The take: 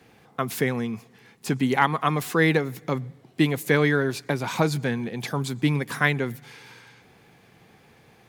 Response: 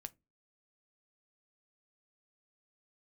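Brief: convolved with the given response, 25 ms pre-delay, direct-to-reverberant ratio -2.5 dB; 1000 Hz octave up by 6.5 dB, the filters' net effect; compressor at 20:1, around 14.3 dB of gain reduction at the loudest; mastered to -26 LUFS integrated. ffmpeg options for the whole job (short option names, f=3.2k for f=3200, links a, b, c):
-filter_complex "[0:a]equalizer=f=1k:t=o:g=8,acompressor=threshold=-23dB:ratio=20,asplit=2[a][b];[1:a]atrim=start_sample=2205,adelay=25[c];[b][c]afir=irnorm=-1:irlink=0,volume=7.5dB[d];[a][d]amix=inputs=2:normalize=0,volume=-0.5dB"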